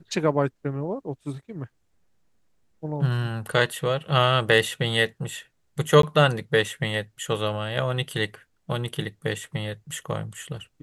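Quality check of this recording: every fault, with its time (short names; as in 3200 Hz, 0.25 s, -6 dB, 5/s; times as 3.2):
6.02–6.03 gap 13 ms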